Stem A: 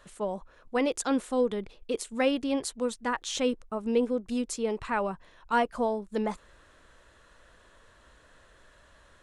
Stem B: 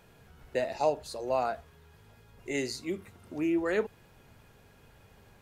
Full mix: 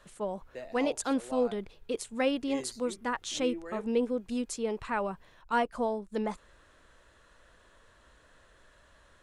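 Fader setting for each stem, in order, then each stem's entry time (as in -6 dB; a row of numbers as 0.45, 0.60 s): -2.5, -12.5 dB; 0.00, 0.00 s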